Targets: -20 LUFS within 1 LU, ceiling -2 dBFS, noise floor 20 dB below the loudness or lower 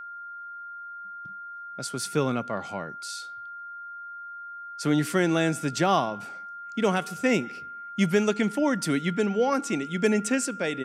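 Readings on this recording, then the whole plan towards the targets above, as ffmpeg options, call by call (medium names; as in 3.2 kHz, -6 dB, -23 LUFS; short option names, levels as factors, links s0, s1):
steady tone 1.4 kHz; tone level -37 dBFS; loudness -26.5 LUFS; peak level -10.0 dBFS; loudness target -20.0 LUFS
-> -af "bandreject=f=1400:w=30"
-af "volume=2.11"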